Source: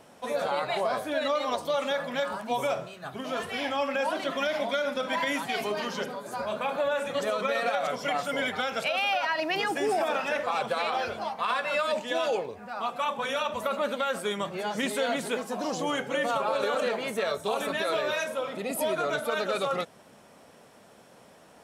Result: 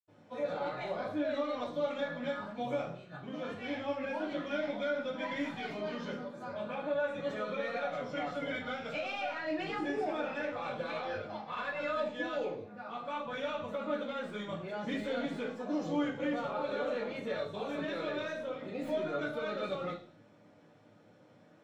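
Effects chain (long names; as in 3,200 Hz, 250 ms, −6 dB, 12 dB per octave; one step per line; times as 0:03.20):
stylus tracing distortion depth 0.06 ms
parametric band 7,200 Hz −3 dB 0.37 octaves
convolution reverb RT60 0.40 s, pre-delay 76 ms, DRR −60 dB
level +2.5 dB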